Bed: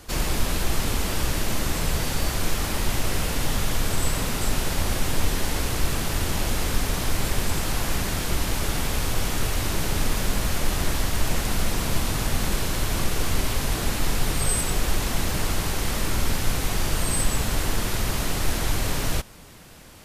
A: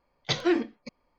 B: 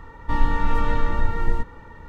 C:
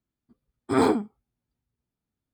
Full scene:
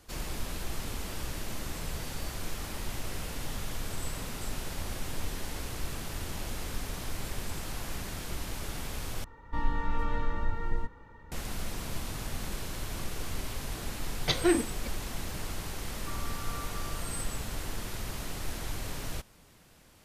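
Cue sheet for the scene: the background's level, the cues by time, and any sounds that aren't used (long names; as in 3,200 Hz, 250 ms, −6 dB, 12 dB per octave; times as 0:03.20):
bed −12 dB
0:09.24: overwrite with B −9.5 dB
0:13.99: mix in A −1 dB
0:15.77: mix in B −7.5 dB + pair of resonant band-passes 920 Hz, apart 0.75 octaves
not used: C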